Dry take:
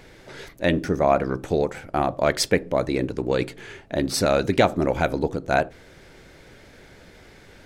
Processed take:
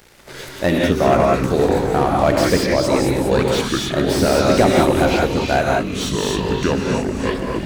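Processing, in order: high shelf 7700 Hz +11.5 dB; in parallel at 0 dB: compressor, threshold -32 dBFS, peak gain reduction 18 dB; on the sum: crossover distortion -39.5 dBFS; on a send: delay with a stepping band-pass 0.22 s, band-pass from 4200 Hz, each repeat 0.7 oct, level -7.5 dB; on the sum: non-linear reverb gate 0.21 s rising, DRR 0.5 dB; echoes that change speed 0.155 s, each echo -6 st, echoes 3, each echo -6 dB; slew limiter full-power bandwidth 240 Hz; gain +2 dB

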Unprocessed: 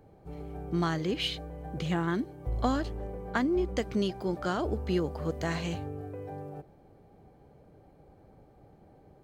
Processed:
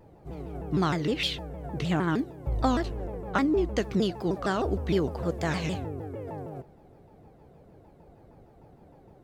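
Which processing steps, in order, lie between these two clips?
shaped vibrato saw down 6.5 Hz, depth 250 cents; gain +3 dB

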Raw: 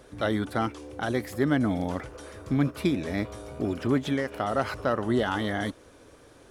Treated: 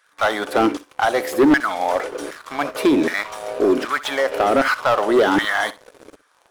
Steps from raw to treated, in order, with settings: LFO high-pass saw down 1.3 Hz 260–1600 Hz; sample leveller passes 3; flutter echo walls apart 10.8 m, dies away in 0.22 s

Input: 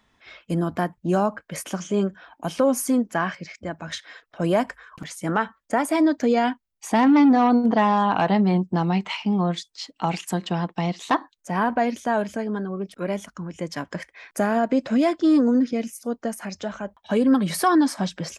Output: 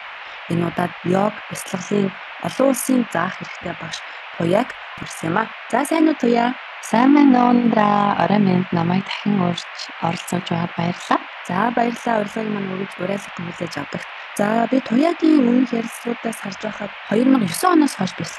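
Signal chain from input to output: AM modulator 47 Hz, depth 55%; band noise 620–2800 Hz -41 dBFS; gain +6.5 dB

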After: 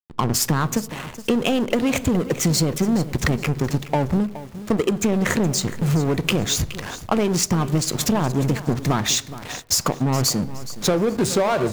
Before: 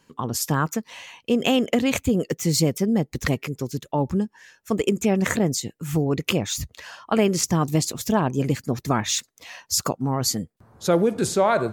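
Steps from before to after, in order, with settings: power-law curve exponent 0.7; backlash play -22 dBFS; on a send at -16 dB: reverb RT60 0.65 s, pre-delay 5 ms; on the sum: compressor 6:1, threshold -24 dBFS, peak gain reduction 11 dB; lo-fi delay 0.419 s, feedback 35%, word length 7-bit, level -14 dB; gain +6.5 dB

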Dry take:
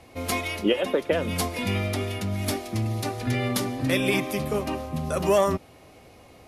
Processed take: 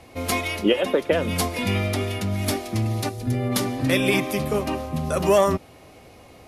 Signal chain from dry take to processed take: 3.08–3.51 bell 1100 Hz -> 3900 Hz -13 dB 2.9 oct; gain +3 dB

